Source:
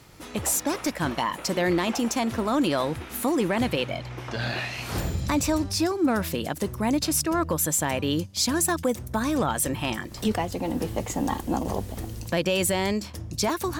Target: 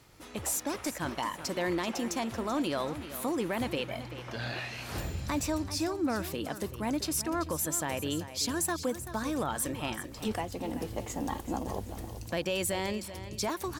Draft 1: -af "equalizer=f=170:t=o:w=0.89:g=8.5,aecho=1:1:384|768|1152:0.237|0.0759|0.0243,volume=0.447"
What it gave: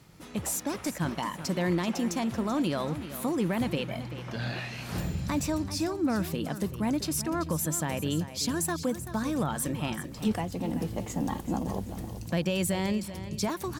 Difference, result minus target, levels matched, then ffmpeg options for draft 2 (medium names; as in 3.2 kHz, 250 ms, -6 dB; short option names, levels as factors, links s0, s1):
125 Hz band +4.5 dB
-af "equalizer=f=170:t=o:w=0.89:g=-3,aecho=1:1:384|768|1152:0.237|0.0759|0.0243,volume=0.447"